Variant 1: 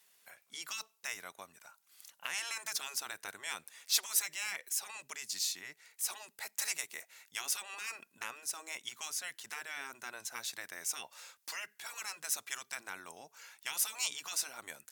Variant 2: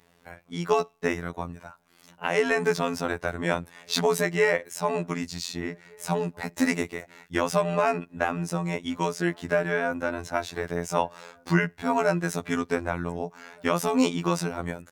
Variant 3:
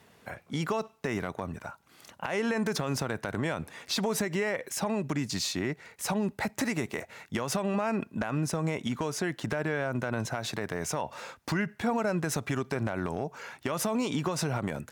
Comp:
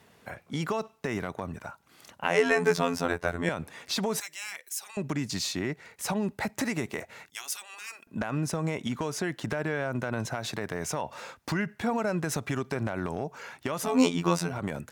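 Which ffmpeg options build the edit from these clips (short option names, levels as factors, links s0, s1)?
-filter_complex "[1:a]asplit=2[s0][s1];[0:a]asplit=2[s2][s3];[2:a]asplit=5[s4][s5][s6][s7][s8];[s4]atrim=end=2.242[s9];[s0]atrim=start=2.238:end=3.492[s10];[s5]atrim=start=3.488:end=4.202[s11];[s2]atrim=start=4.198:end=4.972[s12];[s6]atrim=start=4.968:end=7.302[s13];[s3]atrim=start=7.298:end=8.072[s14];[s7]atrim=start=8.068:end=13.98[s15];[s1]atrim=start=13.74:end=14.65[s16];[s8]atrim=start=14.41[s17];[s9][s10]acrossfade=d=0.004:c1=hsin:c2=hsin[s18];[s18][s11]acrossfade=d=0.004:c1=hsin:c2=hsin[s19];[s19][s12]acrossfade=d=0.004:c1=hsin:c2=hsin[s20];[s20][s13]acrossfade=d=0.004:c1=hsin:c2=hsin[s21];[s21][s14]acrossfade=d=0.004:c1=hsin:c2=hsin[s22];[s22][s15]acrossfade=d=0.004:c1=hsin:c2=hsin[s23];[s23][s16]acrossfade=d=0.24:c1=tri:c2=tri[s24];[s24][s17]acrossfade=d=0.24:c1=tri:c2=tri"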